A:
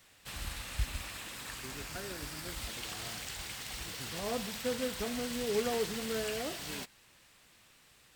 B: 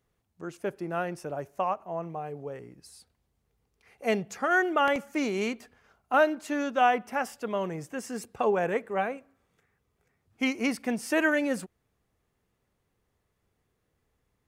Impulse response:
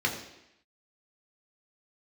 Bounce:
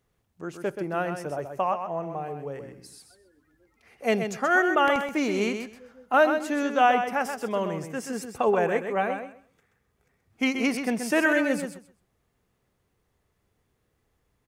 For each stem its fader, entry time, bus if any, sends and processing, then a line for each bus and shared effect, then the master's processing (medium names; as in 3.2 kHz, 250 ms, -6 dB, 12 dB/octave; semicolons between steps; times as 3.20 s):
-14.5 dB, 1.15 s, no send, no echo send, Chebyshev band-pass 260–2200 Hz; loudest bins only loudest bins 8
+2.5 dB, 0.00 s, no send, echo send -7.5 dB, none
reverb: none
echo: feedback delay 129 ms, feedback 18%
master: none